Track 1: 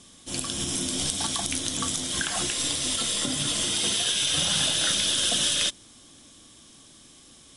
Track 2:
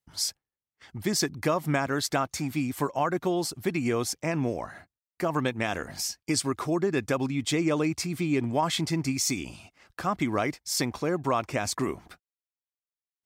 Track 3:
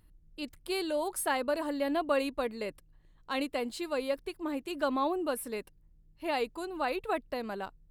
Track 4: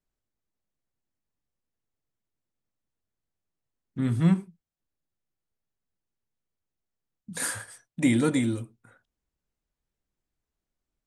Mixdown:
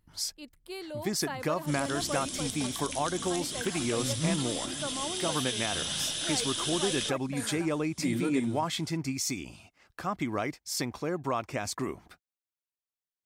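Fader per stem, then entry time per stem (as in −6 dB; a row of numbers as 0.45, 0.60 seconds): −9.0, −4.5, −7.5, −8.5 decibels; 1.40, 0.00, 0.00, 0.00 seconds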